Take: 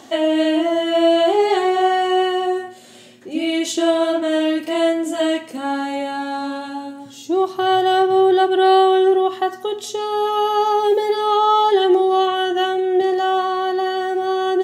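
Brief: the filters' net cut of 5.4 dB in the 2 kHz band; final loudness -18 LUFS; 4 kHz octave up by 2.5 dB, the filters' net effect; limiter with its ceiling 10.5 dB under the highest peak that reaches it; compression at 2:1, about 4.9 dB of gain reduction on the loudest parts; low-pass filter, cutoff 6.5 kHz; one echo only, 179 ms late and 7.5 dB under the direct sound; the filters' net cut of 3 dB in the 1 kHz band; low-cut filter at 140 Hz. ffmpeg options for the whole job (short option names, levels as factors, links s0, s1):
-af "highpass=140,lowpass=6500,equalizer=f=1000:t=o:g=-3.5,equalizer=f=2000:t=o:g=-7.5,equalizer=f=4000:t=o:g=8,acompressor=threshold=0.1:ratio=2,alimiter=limit=0.0944:level=0:latency=1,aecho=1:1:179:0.422,volume=2.82"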